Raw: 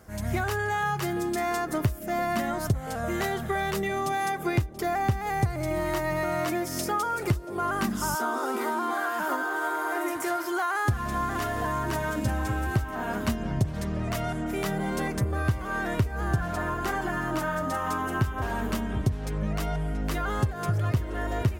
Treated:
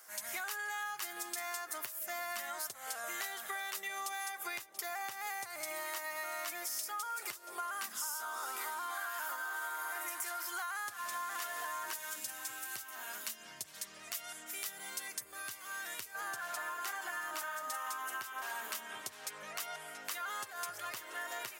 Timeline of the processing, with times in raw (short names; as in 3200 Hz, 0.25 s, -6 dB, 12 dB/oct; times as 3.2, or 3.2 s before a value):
11.93–16.15 bell 880 Hz -10 dB 2.9 oct
whole clip: HPF 1100 Hz 12 dB/oct; high shelf 5100 Hz +10.5 dB; compressor, threshold -35 dBFS; gain -2 dB